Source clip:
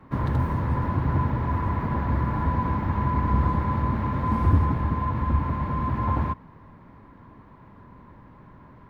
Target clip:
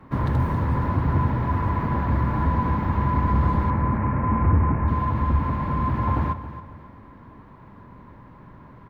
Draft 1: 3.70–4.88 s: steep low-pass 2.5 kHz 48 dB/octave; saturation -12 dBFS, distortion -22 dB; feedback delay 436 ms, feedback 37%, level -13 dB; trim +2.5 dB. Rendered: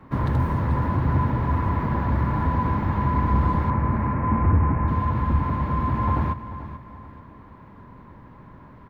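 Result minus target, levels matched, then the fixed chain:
echo 164 ms late
3.70–4.88 s: steep low-pass 2.5 kHz 48 dB/octave; saturation -12 dBFS, distortion -22 dB; feedback delay 272 ms, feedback 37%, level -13 dB; trim +2.5 dB

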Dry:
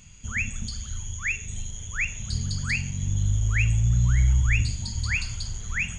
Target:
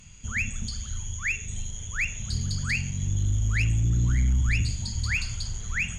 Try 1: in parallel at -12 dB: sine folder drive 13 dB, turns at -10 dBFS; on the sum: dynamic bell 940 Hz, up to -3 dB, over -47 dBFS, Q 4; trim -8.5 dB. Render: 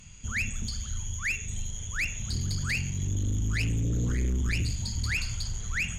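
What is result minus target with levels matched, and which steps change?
sine folder: distortion +14 dB
change: sine folder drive 13 dB, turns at -4 dBFS

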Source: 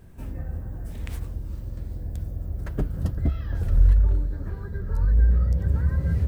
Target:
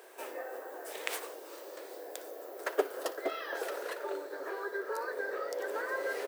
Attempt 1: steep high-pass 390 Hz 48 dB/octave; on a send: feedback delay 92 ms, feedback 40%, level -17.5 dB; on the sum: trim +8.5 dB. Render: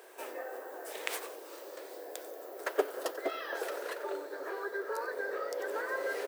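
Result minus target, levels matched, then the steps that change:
echo 33 ms late
change: feedback delay 59 ms, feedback 40%, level -17.5 dB

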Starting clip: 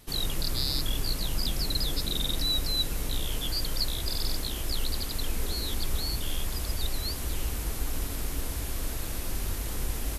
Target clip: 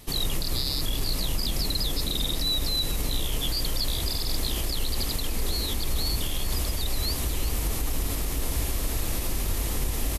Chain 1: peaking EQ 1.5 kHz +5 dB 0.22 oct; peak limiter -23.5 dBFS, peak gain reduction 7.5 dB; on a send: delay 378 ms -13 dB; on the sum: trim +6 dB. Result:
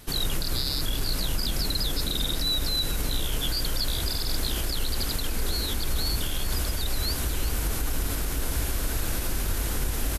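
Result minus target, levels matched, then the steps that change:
2 kHz band +2.5 dB
change: peaking EQ 1.5 kHz -6.5 dB 0.22 oct

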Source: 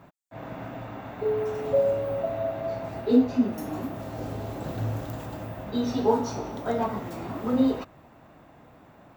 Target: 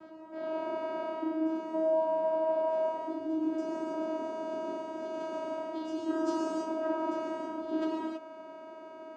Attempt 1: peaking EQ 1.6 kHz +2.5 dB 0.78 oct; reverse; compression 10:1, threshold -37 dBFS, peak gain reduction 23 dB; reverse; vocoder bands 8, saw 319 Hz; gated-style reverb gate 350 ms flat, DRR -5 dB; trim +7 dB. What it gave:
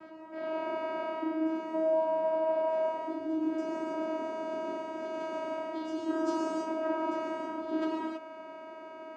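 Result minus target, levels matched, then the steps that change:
2 kHz band +3.0 dB
change: peaking EQ 1.6 kHz -6 dB 0.78 oct

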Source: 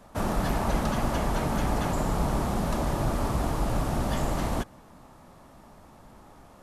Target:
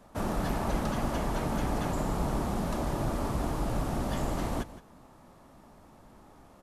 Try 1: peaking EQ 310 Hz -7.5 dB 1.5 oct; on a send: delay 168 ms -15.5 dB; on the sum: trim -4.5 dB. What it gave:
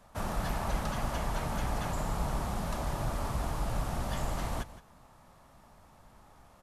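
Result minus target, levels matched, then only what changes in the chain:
250 Hz band -4.0 dB
change: peaking EQ 310 Hz +2.5 dB 1.5 oct

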